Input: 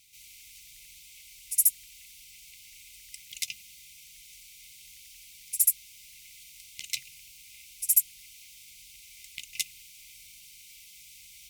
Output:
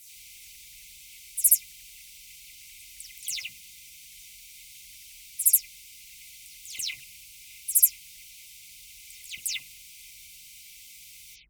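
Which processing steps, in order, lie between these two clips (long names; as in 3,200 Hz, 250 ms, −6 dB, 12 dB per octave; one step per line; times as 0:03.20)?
every frequency bin delayed by itself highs early, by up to 137 ms
level +3 dB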